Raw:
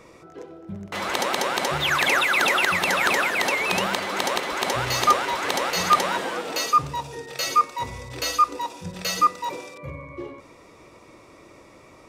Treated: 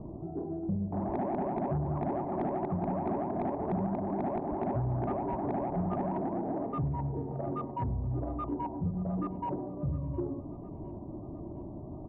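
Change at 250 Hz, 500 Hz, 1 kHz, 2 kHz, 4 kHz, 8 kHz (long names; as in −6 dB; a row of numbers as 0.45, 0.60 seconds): +3.0 dB, −5.5 dB, −13.0 dB, −32.5 dB, below −40 dB, below −40 dB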